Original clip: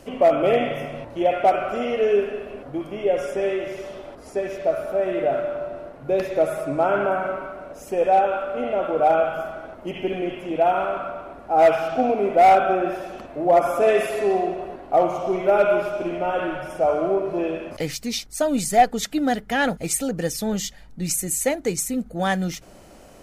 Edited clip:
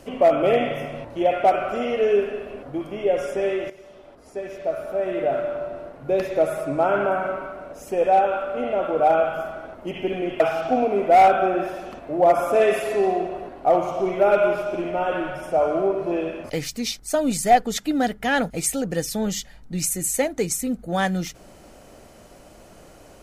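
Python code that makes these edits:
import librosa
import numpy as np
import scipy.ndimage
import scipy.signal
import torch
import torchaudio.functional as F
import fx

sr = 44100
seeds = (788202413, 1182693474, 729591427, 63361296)

y = fx.edit(x, sr, fx.fade_in_from(start_s=3.7, length_s=1.79, floor_db=-13.5),
    fx.cut(start_s=10.4, length_s=1.27), tone=tone)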